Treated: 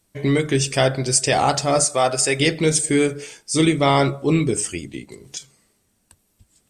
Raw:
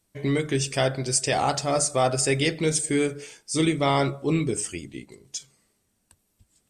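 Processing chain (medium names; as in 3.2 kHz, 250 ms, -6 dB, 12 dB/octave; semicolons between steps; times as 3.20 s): 1.84–2.40 s: bass shelf 290 Hz -11 dB; 4.93–5.37 s: three bands compressed up and down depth 70%; trim +5.5 dB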